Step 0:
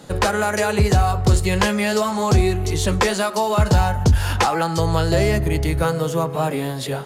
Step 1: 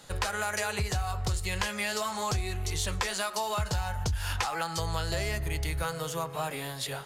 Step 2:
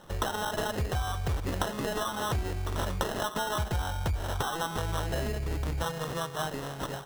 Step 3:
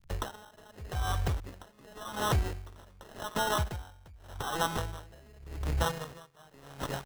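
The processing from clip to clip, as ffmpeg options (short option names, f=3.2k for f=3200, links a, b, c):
-af "equalizer=f=260:w=0.43:g=-14,acompressor=threshold=-23dB:ratio=6,volume=-3.5dB"
-af "acrusher=samples=19:mix=1:aa=0.000001"
-filter_complex "[0:a]acrossover=split=110[a][b];[b]aeval=exprs='sgn(val(0))*max(abs(val(0))-0.00562,0)':c=same[c];[a][c]amix=inputs=2:normalize=0,aeval=exprs='val(0)*pow(10,-27*(0.5-0.5*cos(2*PI*0.86*n/s))/20)':c=same,volume=4dB"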